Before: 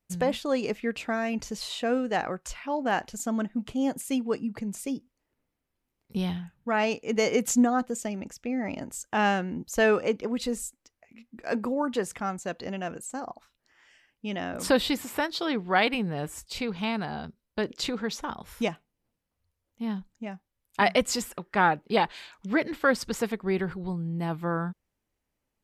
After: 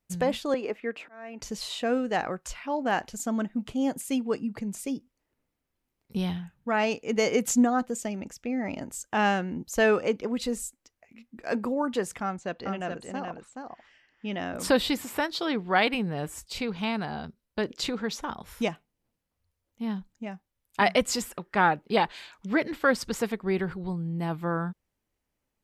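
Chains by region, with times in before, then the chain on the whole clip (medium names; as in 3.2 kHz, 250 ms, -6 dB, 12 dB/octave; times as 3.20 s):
0.54–1.42 s: slow attack 509 ms + three-band isolator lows -19 dB, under 260 Hz, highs -14 dB, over 2.6 kHz
12.23–14.40 s: low-pass 4.5 kHz + delay 425 ms -5 dB
whole clip: none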